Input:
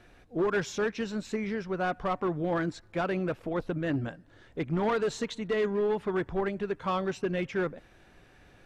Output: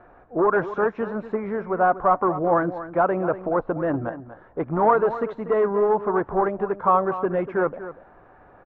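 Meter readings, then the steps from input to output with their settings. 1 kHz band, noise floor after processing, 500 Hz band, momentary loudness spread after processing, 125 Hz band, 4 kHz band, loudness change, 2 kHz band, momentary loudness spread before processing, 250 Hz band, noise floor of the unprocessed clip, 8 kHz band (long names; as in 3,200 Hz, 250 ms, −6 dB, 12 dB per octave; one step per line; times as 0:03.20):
+13.0 dB, −51 dBFS, +8.5 dB, 9 LU, +2.0 dB, below −15 dB, +8.0 dB, +4.5 dB, 6 LU, +4.5 dB, −58 dBFS, below −25 dB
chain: low-pass with resonance 1,200 Hz, resonance Q 1.8
parametric band 730 Hz +10 dB 2.2 octaves
single-tap delay 241 ms −13 dB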